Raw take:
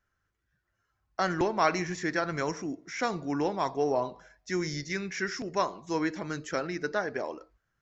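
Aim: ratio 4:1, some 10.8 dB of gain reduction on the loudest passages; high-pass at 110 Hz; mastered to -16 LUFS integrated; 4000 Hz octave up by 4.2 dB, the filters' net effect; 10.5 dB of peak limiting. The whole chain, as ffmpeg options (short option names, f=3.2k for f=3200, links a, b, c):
-af "highpass=110,equalizer=f=4k:t=o:g=6,acompressor=threshold=-33dB:ratio=4,volume=23.5dB,alimiter=limit=-5dB:level=0:latency=1"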